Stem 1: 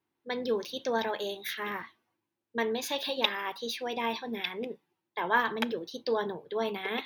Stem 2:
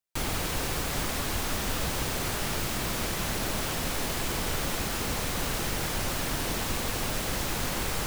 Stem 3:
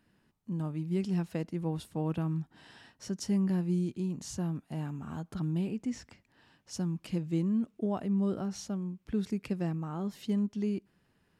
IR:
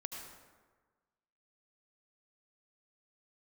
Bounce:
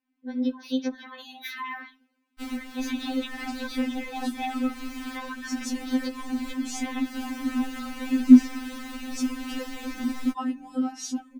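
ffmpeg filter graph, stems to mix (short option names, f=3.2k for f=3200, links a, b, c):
-filter_complex "[0:a]acompressor=threshold=-36dB:ratio=4,volume=0.5dB[a];[1:a]adelay=2250,volume=-14.5dB[b];[2:a]adelay=2450,volume=-1dB[c];[a][b]amix=inputs=2:normalize=0,highshelf=f=5.3k:g=-8.5,acompressor=threshold=-40dB:ratio=6,volume=0dB[d];[c][d]amix=inputs=2:normalize=0,dynaudnorm=f=260:g=3:m=9dB,equalizer=f=250:t=o:w=1:g=11,equalizer=f=500:t=o:w=1:g=-6,equalizer=f=2k:t=o:w=1:g=4,afftfilt=real='re*3.46*eq(mod(b,12),0)':imag='im*3.46*eq(mod(b,12),0)':win_size=2048:overlap=0.75"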